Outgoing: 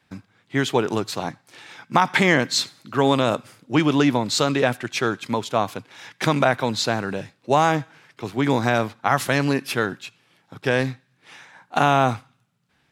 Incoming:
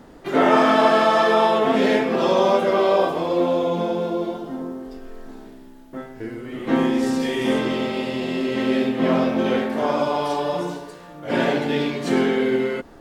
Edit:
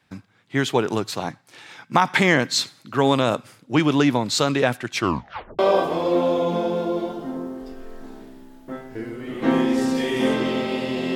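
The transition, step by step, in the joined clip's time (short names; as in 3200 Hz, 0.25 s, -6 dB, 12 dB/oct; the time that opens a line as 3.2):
outgoing
4.95 tape stop 0.64 s
5.59 switch to incoming from 2.84 s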